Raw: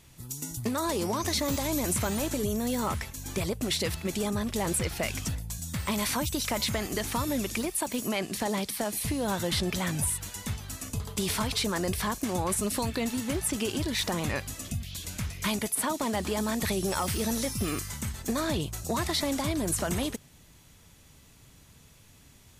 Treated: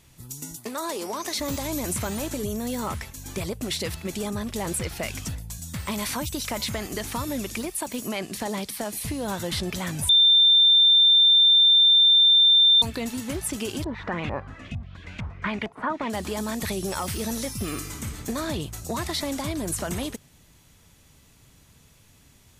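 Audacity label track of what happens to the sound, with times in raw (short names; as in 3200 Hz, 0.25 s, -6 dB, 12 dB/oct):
0.560000	1.400000	HPF 330 Hz
10.090000	12.820000	bleep 3580 Hz -13 dBFS
13.840000	16.100000	LFO low-pass saw up 2.2 Hz 810–2900 Hz
17.680000	18.190000	reverb throw, RT60 2.6 s, DRR 5 dB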